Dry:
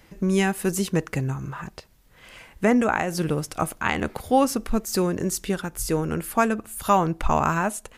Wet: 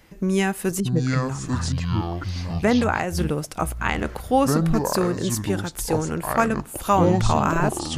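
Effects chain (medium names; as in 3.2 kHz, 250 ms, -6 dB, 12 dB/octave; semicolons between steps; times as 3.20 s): 0.80–1.23 s: spectral contrast enhancement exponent 1.9; ever faster or slower copies 520 ms, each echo -7 st, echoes 2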